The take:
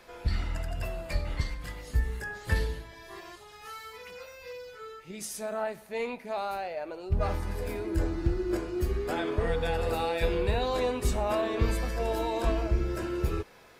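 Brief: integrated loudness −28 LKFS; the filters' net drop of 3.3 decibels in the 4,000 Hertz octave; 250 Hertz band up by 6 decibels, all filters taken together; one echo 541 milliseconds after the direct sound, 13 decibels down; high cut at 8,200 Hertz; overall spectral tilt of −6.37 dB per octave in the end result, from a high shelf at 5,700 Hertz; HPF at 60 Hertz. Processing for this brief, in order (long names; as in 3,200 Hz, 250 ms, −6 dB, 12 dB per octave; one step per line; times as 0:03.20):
high-pass filter 60 Hz
low-pass filter 8,200 Hz
parametric band 250 Hz +9 dB
parametric band 4,000 Hz −5 dB
high-shelf EQ 5,700 Hz +3 dB
single-tap delay 541 ms −13 dB
level +2 dB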